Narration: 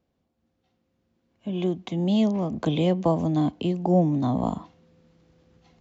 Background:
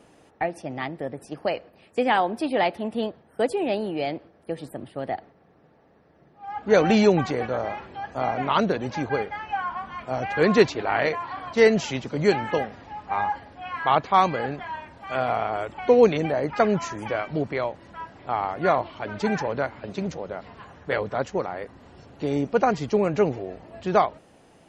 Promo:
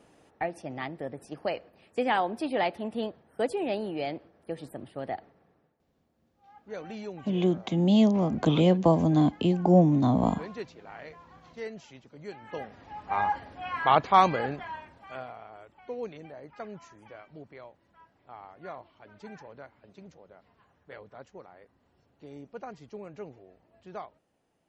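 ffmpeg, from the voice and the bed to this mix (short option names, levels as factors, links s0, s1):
-filter_complex "[0:a]adelay=5800,volume=1.12[s0];[1:a]volume=5.96,afade=t=out:st=5.37:d=0.41:silence=0.149624,afade=t=in:st=12.4:d=0.91:silence=0.0944061,afade=t=out:st=14.26:d=1.07:silence=0.105925[s1];[s0][s1]amix=inputs=2:normalize=0"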